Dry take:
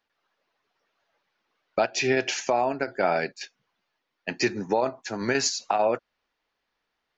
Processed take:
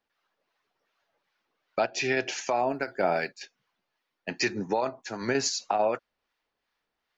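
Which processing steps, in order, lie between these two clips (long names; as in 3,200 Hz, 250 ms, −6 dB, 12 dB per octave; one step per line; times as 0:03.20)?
0:02.69–0:04.30: floating-point word with a short mantissa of 6 bits
two-band tremolo in antiphase 2.6 Hz, depth 50%, crossover 820 Hz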